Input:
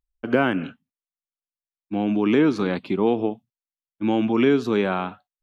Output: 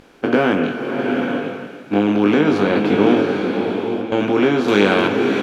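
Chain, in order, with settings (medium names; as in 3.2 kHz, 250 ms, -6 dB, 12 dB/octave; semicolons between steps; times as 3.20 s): spectral levelling over time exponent 0.4; doubling 20 ms -5 dB; speakerphone echo 290 ms, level -19 dB; 3.21–4.12 s: compression 3:1, threshold -35 dBFS, peak gain reduction 16.5 dB; 4.68–5.08 s: treble shelf 2.2 kHz +11 dB; swelling reverb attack 800 ms, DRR 3 dB; trim -1 dB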